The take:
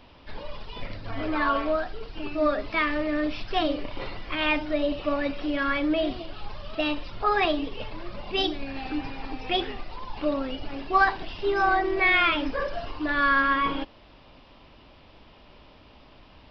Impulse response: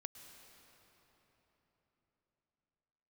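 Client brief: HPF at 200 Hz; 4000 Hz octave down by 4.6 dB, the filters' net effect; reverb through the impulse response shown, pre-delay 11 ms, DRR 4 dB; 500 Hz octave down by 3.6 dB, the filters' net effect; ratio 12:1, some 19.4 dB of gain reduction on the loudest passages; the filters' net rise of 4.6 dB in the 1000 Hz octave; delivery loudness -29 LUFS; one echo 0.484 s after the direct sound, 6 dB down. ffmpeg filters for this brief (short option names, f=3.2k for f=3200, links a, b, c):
-filter_complex "[0:a]highpass=200,equalizer=f=500:t=o:g=-8,equalizer=f=1k:t=o:g=8.5,equalizer=f=4k:t=o:g=-7,acompressor=threshold=-32dB:ratio=12,aecho=1:1:484:0.501,asplit=2[a][b];[1:a]atrim=start_sample=2205,adelay=11[c];[b][c]afir=irnorm=-1:irlink=0,volume=0.5dB[d];[a][d]amix=inputs=2:normalize=0,volume=5.5dB"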